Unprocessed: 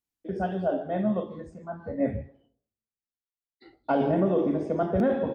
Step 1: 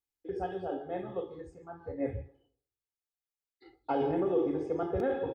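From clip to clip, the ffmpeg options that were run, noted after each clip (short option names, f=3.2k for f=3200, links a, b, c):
-af "aecho=1:1:2.4:0.86,volume=-7dB"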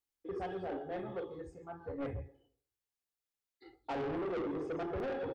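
-af "asoftclip=type=tanh:threshold=-34dB"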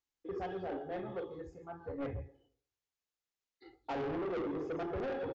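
-af "aresample=16000,aresample=44100"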